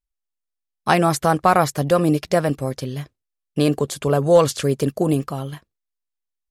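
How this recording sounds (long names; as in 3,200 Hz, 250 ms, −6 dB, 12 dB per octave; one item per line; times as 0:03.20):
background noise floor −82 dBFS
spectral slope −6.0 dB per octave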